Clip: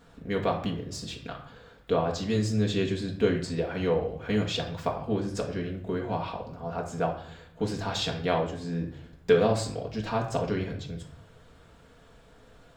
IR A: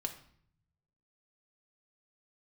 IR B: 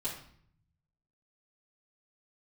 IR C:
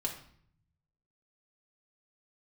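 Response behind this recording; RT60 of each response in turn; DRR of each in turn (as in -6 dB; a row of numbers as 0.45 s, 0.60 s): C; 0.60 s, 0.60 s, 0.60 s; 4.0 dB, -8.5 dB, -0.5 dB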